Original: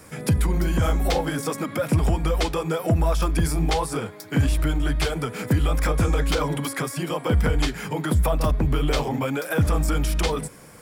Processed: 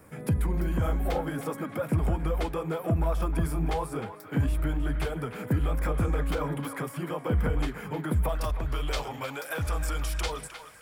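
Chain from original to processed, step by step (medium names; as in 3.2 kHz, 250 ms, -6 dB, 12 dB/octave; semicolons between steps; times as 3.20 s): peaking EQ 5.4 kHz -12 dB 1.9 oct, from 8.29 s 210 Hz; band-passed feedback delay 309 ms, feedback 58%, band-pass 1.7 kHz, level -8.5 dB; trim -5.5 dB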